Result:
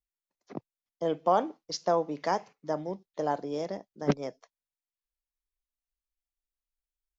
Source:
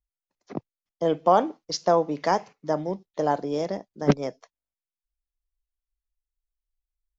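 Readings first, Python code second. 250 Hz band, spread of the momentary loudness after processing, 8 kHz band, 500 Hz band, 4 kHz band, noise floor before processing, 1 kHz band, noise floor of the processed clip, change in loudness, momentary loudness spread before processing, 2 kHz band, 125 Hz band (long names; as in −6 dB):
−6.5 dB, 15 LU, can't be measured, −5.5 dB, −5.5 dB, below −85 dBFS, −5.5 dB, below −85 dBFS, −6.0 dB, 14 LU, −5.5 dB, −7.0 dB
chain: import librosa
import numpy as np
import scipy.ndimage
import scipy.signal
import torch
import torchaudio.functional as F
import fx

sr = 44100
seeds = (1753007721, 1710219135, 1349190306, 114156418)

y = fx.low_shelf(x, sr, hz=130.0, db=-4.0)
y = y * 10.0 ** (-5.5 / 20.0)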